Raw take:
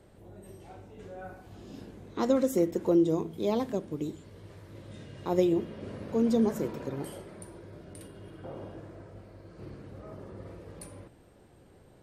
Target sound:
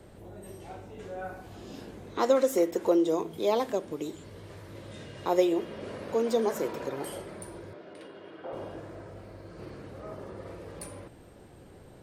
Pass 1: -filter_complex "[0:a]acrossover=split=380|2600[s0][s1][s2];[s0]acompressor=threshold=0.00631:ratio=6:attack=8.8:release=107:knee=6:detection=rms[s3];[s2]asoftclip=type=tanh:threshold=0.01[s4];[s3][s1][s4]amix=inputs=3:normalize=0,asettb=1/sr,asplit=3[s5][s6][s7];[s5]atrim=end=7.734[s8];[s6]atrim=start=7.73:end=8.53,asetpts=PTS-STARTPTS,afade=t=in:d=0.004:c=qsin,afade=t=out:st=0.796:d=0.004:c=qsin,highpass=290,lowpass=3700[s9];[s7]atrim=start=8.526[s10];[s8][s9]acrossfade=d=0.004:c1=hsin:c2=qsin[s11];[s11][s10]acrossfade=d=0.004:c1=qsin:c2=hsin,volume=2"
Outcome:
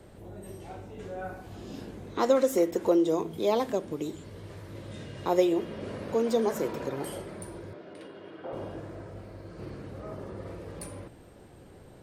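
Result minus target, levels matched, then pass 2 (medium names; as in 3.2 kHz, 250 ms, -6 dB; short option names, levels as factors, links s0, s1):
compression: peak gain reduction -5.5 dB
-filter_complex "[0:a]acrossover=split=380|2600[s0][s1][s2];[s0]acompressor=threshold=0.00299:ratio=6:attack=8.8:release=107:knee=6:detection=rms[s3];[s2]asoftclip=type=tanh:threshold=0.01[s4];[s3][s1][s4]amix=inputs=3:normalize=0,asettb=1/sr,asplit=3[s5][s6][s7];[s5]atrim=end=7.734[s8];[s6]atrim=start=7.73:end=8.53,asetpts=PTS-STARTPTS,afade=t=in:d=0.004:c=qsin,afade=t=out:st=0.796:d=0.004:c=qsin,highpass=290,lowpass=3700[s9];[s7]atrim=start=8.526[s10];[s8][s9]acrossfade=d=0.004:c1=hsin:c2=qsin[s11];[s11][s10]acrossfade=d=0.004:c1=qsin:c2=hsin,volume=2"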